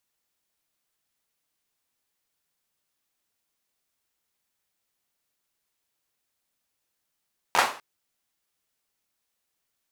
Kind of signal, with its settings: hand clap length 0.25 s, apart 12 ms, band 960 Hz, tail 0.39 s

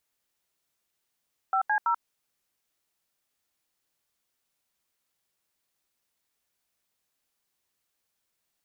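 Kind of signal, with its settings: DTMF "5C0", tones 86 ms, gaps 79 ms, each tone -24.5 dBFS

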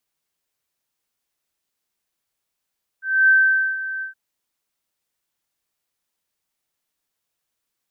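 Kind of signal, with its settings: ADSR sine 1.55 kHz, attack 263 ms, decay 484 ms, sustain -14.5 dB, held 1.00 s, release 119 ms -10 dBFS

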